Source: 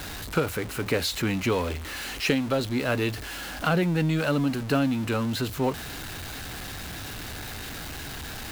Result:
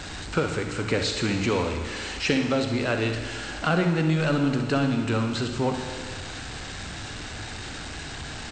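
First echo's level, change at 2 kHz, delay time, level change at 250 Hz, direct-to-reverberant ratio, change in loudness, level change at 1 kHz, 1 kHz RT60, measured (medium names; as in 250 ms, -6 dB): -10.5 dB, +1.5 dB, 64 ms, +1.0 dB, 4.5 dB, +1.0 dB, +1.5 dB, 1.8 s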